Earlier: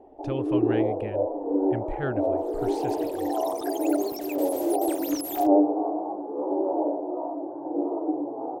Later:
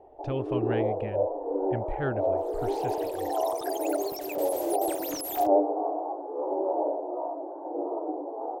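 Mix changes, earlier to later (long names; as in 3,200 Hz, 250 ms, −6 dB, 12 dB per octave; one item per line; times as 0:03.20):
speech: add high-frequency loss of the air 82 metres
first sound: add high-pass filter 390 Hz 24 dB per octave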